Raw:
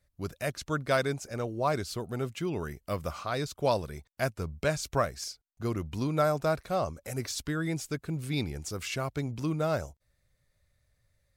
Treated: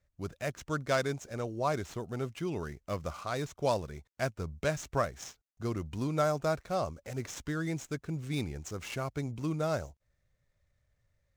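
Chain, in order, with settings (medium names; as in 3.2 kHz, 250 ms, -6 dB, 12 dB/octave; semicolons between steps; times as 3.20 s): median filter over 9 samples; peaking EQ 6.1 kHz +8 dB 0.89 oct; trim -2.5 dB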